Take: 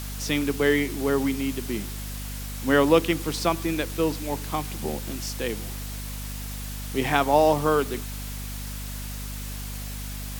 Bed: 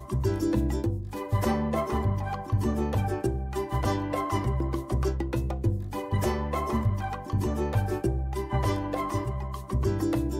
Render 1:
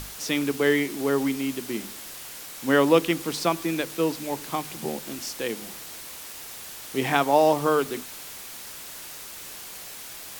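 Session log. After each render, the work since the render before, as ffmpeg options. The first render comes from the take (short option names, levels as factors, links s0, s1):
-af "bandreject=f=50:t=h:w=6,bandreject=f=100:t=h:w=6,bandreject=f=150:t=h:w=6,bandreject=f=200:t=h:w=6,bandreject=f=250:t=h:w=6"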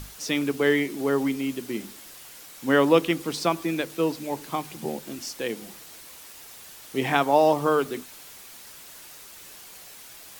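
-af "afftdn=nr=6:nf=-40"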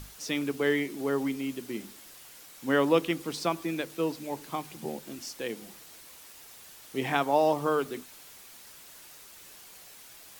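-af "volume=0.562"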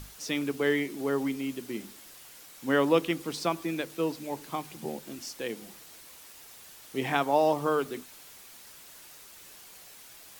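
-af anull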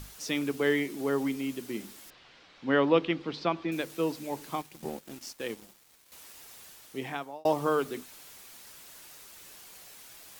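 -filter_complex "[0:a]asettb=1/sr,asplit=3[s0][s1][s2];[s0]atrim=end=2.104[s3];[s1]atrim=start=2.1:end=3.72,asetpts=PTS-STARTPTS,afade=t=in:d=0.004:c=qsin,afade=t=out:st=1.616:d=0.004:c=qsin,lowpass=f=4200:w=0.5412,lowpass=f=4200:w=1.3066[s4];[s2]atrim=start=3.716[s5];[s3][s4]acrossfade=d=0.004:c1=hsin:c2=qsin[s6];[s6][s5]acrossfade=d=0.004:c1=qsin:c2=hsin,asettb=1/sr,asplit=3[s7][s8][s9];[s7]atrim=end=4.614[s10];[s8]atrim=start=4.61:end=6.12,asetpts=PTS-STARTPTS,afade=t=in:d=0.004:c=qsin,afade=t=out:st=1.506:d=0.004:c=qsin,aeval=exprs='sgn(val(0))*max(abs(val(0))-0.00398,0)':c=same[s11];[s9]atrim=start=6.116[s12];[s10][s11]acrossfade=d=0.004:c1=hsin:c2=qsin[s13];[s13][s12]acrossfade=d=0.004:c1=qsin:c2=hsin,asplit=2[s14][s15];[s14]atrim=end=7.45,asetpts=PTS-STARTPTS,afade=t=out:st=6.63:d=0.82[s16];[s15]atrim=start=7.45,asetpts=PTS-STARTPTS,afade=t=in:d=0.004:c=hsin[s17];[s16][s17]concat=n=2:v=0:a=1"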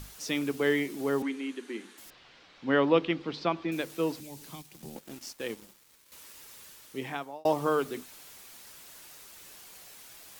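-filter_complex "[0:a]asettb=1/sr,asplit=3[s0][s1][s2];[s0]atrim=end=1.224[s3];[s1]atrim=start=1.22:end=1.98,asetpts=PTS-STARTPTS,afade=t=in:d=0.004:c=qsin,afade=t=out:st=0.756:d=0.004:c=qsin,highpass=f=260:w=0.5412,highpass=f=260:w=1.3066,equalizer=f=630:t=q:w=4:g=-10,equalizer=f=1700:t=q:w=4:g=6,equalizer=f=5200:t=q:w=4:g=-10,equalizer=f=7500:t=q:w=4:g=-7,lowpass=f=8500:w=0.5412,lowpass=f=8500:w=1.3066[s4];[s2]atrim=start=1.976[s5];[s3][s4]acrossfade=d=0.004:c1=hsin:c2=qsin[s6];[s6][s5]acrossfade=d=0.004:c1=qsin:c2=hsin,asettb=1/sr,asplit=3[s7][s8][s9];[s7]atrim=end=4.204[s10];[s8]atrim=start=4.2:end=4.96,asetpts=PTS-STARTPTS,afade=t=in:d=0.004:c=qsin,afade=t=out:st=0.756:d=0.004:c=qsin,acrossover=split=220|3000[s11][s12][s13];[s12]acompressor=threshold=0.002:ratio=2.5:attack=3.2:release=140:knee=2.83:detection=peak[s14];[s11][s14][s13]amix=inputs=3:normalize=0[s15];[s9]atrim=start=4.956[s16];[s10][s15]acrossfade=d=0.004:c1=hsin:c2=qsin[s17];[s17][s16]acrossfade=d=0.004:c1=qsin:c2=hsin,asettb=1/sr,asplit=3[s18][s19][s20];[s18]atrim=end=5.564[s21];[s19]atrim=start=5.56:end=7.1,asetpts=PTS-STARTPTS,afade=t=in:d=0.004:c=qsin,afade=t=out:st=1.536:d=0.004:c=qsin,bandreject=f=730:w=6[s22];[s20]atrim=start=7.096[s23];[s21][s22]acrossfade=d=0.004:c1=hsin:c2=qsin[s24];[s24][s23]acrossfade=d=0.004:c1=qsin:c2=hsin"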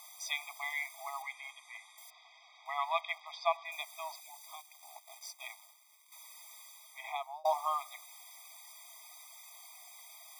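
-filter_complex "[0:a]acrossover=split=180|460|5300[s0][s1][s2][s3];[s0]acrusher=bits=5:dc=4:mix=0:aa=0.000001[s4];[s4][s1][s2][s3]amix=inputs=4:normalize=0,afftfilt=real='re*eq(mod(floor(b*sr/1024/640),2),1)':imag='im*eq(mod(floor(b*sr/1024/640),2),1)':win_size=1024:overlap=0.75"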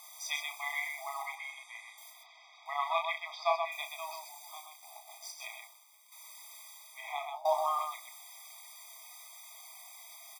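-filter_complex "[0:a]asplit=2[s0][s1];[s1]adelay=29,volume=0.237[s2];[s0][s2]amix=inputs=2:normalize=0,asplit=2[s3][s4];[s4]aecho=0:1:34.99|128.3:0.501|0.562[s5];[s3][s5]amix=inputs=2:normalize=0"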